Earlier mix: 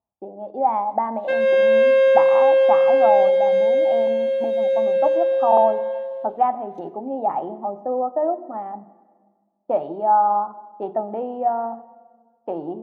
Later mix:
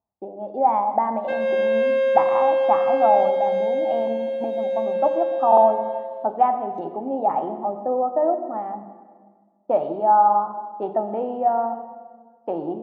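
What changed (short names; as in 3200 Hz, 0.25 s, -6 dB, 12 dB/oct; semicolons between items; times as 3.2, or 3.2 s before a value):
speech: send +8.5 dB; background -5.0 dB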